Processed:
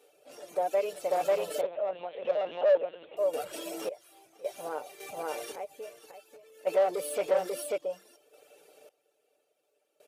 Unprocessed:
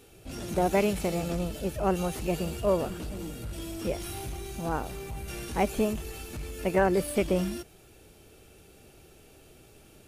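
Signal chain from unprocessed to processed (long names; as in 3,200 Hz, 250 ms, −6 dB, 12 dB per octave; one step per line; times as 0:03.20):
comb filter 6.8 ms, depth 48%
reverb reduction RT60 1.1 s
0:05.34–0:06.65: downward compressor 3 to 1, threshold −39 dBFS, peak gain reduction 14 dB
on a send: single-tap delay 541 ms −5 dB
0:01.61–0:03.17: on the sum: linear-prediction vocoder at 8 kHz pitch kept
in parallel at −12 dB: asymmetric clip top −20.5 dBFS
on the sum: sample-and-hold tremolo 1.8 Hz, depth 95%
soft clipping −25.5 dBFS, distortion −9 dB
brickwall limiter −31 dBFS, peak gain reduction 5.5 dB
high-pass with resonance 540 Hz, resonance Q 3.8
level +2 dB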